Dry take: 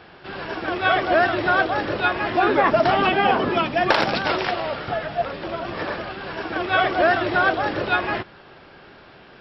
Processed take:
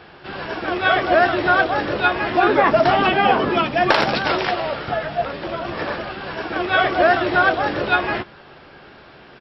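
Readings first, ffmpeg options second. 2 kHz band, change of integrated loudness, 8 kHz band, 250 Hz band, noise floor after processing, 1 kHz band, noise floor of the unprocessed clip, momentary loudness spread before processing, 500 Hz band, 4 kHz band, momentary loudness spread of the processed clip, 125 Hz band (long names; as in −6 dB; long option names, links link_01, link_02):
+2.5 dB, +2.5 dB, can't be measured, +2.5 dB, −45 dBFS, +2.5 dB, −47 dBFS, 11 LU, +2.5 dB, +2.5 dB, 12 LU, +2.0 dB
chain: -filter_complex "[0:a]asplit=2[link_01][link_02];[link_02]adelay=14,volume=-11dB[link_03];[link_01][link_03]amix=inputs=2:normalize=0,volume=2dB"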